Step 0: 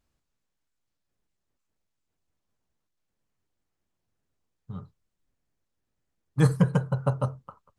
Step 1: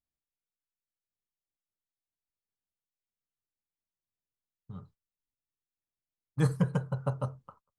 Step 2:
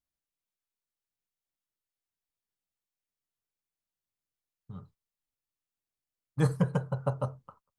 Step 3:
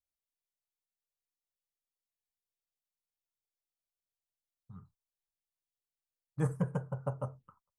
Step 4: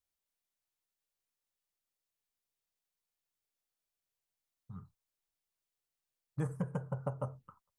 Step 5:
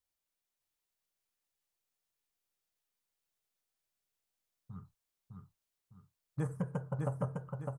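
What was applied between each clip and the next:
gate -52 dBFS, range -14 dB; trim -6 dB
dynamic bell 660 Hz, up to +4 dB, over -47 dBFS, Q 1.1
touch-sensitive phaser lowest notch 240 Hz, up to 4.1 kHz, full sweep at -29.5 dBFS; trim -5.5 dB
compression, threshold -35 dBFS, peak gain reduction 10 dB; trim +3 dB
feedback delay 606 ms, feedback 38%, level -3.5 dB

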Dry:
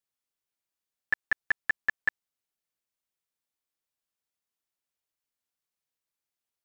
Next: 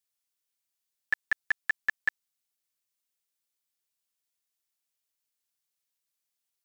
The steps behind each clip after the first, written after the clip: treble shelf 2.2 kHz +11 dB; trim -5 dB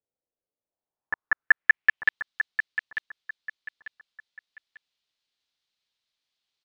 low-pass sweep 540 Hz -> 3.9 kHz, 0.62–2.22 s; feedback delay 894 ms, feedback 31%, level -10 dB; trim +4 dB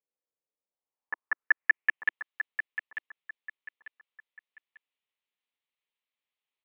cabinet simulation 280–2700 Hz, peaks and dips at 330 Hz -5 dB, 670 Hz -6 dB, 1.5 kHz -8 dB; trim -2 dB

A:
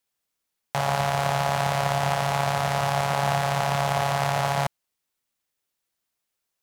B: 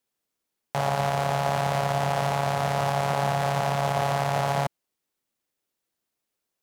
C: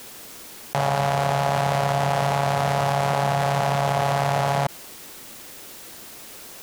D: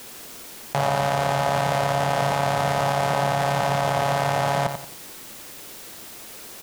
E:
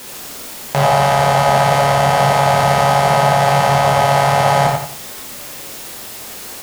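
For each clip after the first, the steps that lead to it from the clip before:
peaking EQ 320 Hz +7.5 dB 2.1 oct; peak limiter -10 dBFS, peak gain reduction 3.5 dB; trim -2.5 dB
level flattener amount 70%; trim +2 dB
feedback delay 89 ms, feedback 32%, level -8 dB
reverberation, pre-delay 3 ms, DRR -0.5 dB; trim +6 dB

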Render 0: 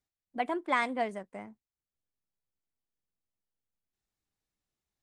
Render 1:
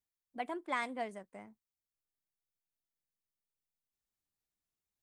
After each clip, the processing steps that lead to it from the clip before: treble shelf 7.4 kHz +8.5 dB; trim -7.5 dB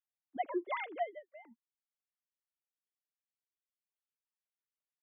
formants replaced by sine waves; trim +1 dB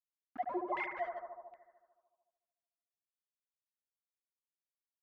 small samples zeroed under -43 dBFS; bucket-brigade echo 74 ms, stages 1024, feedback 71%, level -5.5 dB; LFO low-pass saw down 1.3 Hz 830–2500 Hz; trim -4.5 dB

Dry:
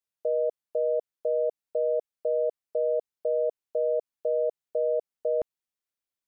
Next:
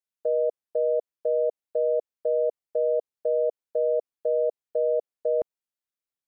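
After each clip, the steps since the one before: dynamic bell 500 Hz, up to +7 dB, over -39 dBFS, Q 0.76; trim -4.5 dB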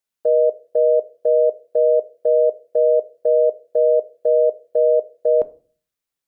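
simulated room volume 250 m³, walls furnished, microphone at 0.34 m; trim +7.5 dB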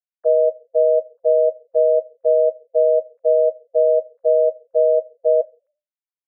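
formants replaced by sine waves

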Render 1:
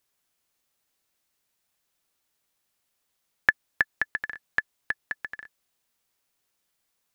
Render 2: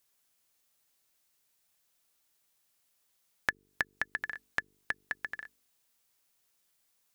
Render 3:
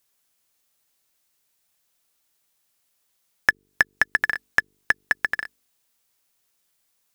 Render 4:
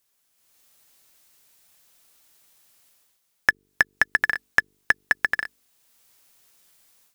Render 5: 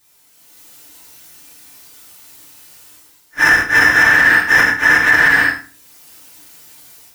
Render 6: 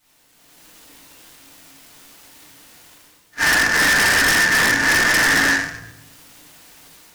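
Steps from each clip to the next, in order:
treble shelf 4.4 kHz +5.5 dB; de-hum 48.86 Hz, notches 9; compression 2.5:1, threshold -29 dBFS, peak gain reduction 11 dB; trim -1.5 dB
waveshaping leveller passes 2; trim +7 dB
level rider gain up to 12 dB; trim -1 dB
phase randomisation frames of 200 ms; FDN reverb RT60 0.37 s, low-frequency decay 1.45×, high-frequency decay 0.85×, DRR -5.5 dB; loudness maximiser +12.5 dB; trim -1 dB
simulated room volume 270 m³, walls mixed, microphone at 1.7 m; wavefolder -4.5 dBFS; delay time shaken by noise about 3.5 kHz, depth 0.033 ms; trim -6 dB

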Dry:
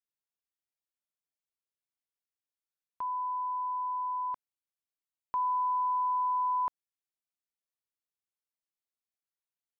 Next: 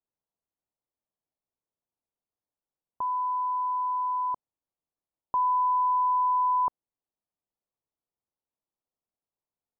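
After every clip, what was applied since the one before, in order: low-pass 1 kHz 24 dB/octave; trim +8 dB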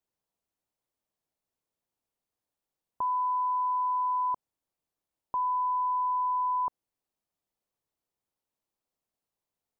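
peak limiter -29 dBFS, peak gain reduction 8.5 dB; trim +4 dB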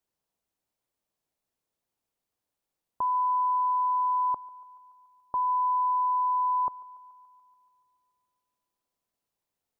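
thinning echo 143 ms, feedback 79%, high-pass 640 Hz, level -20 dB; trim +2 dB

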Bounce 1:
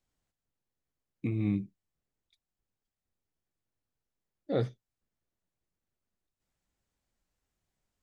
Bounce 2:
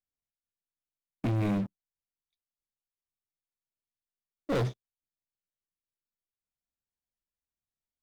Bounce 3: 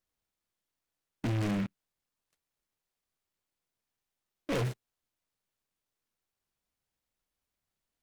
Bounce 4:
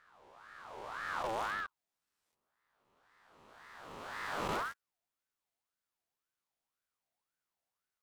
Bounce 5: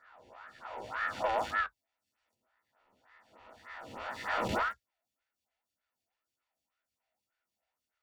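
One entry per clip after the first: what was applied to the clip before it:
waveshaping leveller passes 5; trim -7.5 dB
peak limiter -35.5 dBFS, peak gain reduction 11 dB; delay time shaken by noise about 1.7 kHz, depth 0.11 ms; trim +8 dB
reverse spectral sustain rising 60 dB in 2.35 s; ring modulator with a swept carrier 1.1 kHz, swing 40%, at 1.9 Hz; trim -5.5 dB
reverberation, pre-delay 3 ms, DRR 10.5 dB; lamp-driven phase shifter 3.3 Hz; trim +1.5 dB

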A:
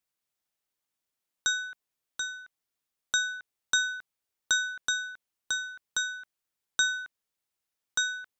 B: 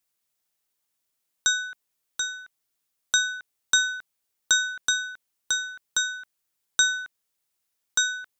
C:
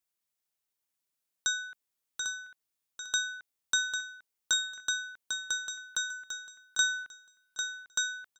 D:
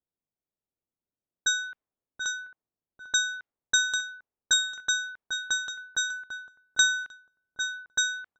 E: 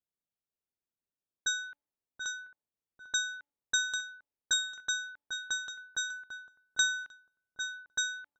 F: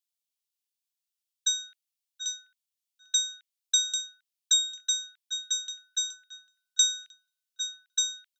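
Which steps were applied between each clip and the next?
treble shelf 5 kHz +6 dB; trim +3 dB
feedback delay 798 ms, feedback 24%, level -6.5 dB; trim -7.5 dB
level-controlled noise filter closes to 500 Hz, open at -28 dBFS; trim +5.5 dB
de-hum 287.2 Hz, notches 3; trim -6 dB
inverse Chebyshev high-pass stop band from 470 Hz, stop band 80 dB; trim +7.5 dB

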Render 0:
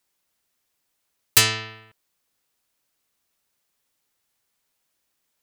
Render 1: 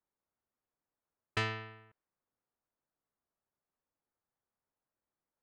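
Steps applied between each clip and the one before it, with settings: low-pass 1.8 kHz 12 dB/octave; level-controlled noise filter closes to 1.4 kHz, open at -33 dBFS; trim -8.5 dB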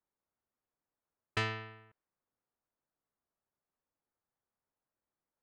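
no audible change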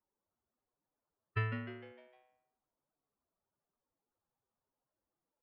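spectral contrast enhancement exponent 2.5; on a send: frequency-shifting echo 152 ms, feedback 45%, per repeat +130 Hz, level -9.5 dB

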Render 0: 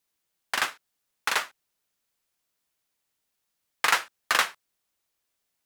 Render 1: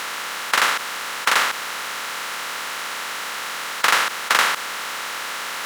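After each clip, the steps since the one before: spectral levelling over time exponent 0.2; Chebyshev high-pass 150 Hz, order 2; trim +2 dB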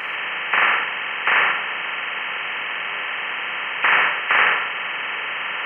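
knee-point frequency compression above 1.7 kHz 4:1; gated-style reverb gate 160 ms flat, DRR 1.5 dB; trim -2 dB

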